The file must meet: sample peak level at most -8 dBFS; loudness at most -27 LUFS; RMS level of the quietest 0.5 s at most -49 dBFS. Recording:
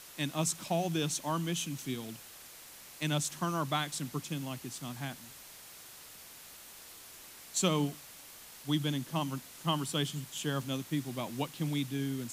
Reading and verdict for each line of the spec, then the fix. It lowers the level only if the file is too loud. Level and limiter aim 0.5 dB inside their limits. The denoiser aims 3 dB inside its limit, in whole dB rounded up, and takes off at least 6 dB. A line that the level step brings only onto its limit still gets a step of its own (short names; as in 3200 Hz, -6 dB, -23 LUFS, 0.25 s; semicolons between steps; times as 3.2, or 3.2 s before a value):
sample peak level -16.0 dBFS: OK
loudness -34.5 LUFS: OK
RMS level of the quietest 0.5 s -52 dBFS: OK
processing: none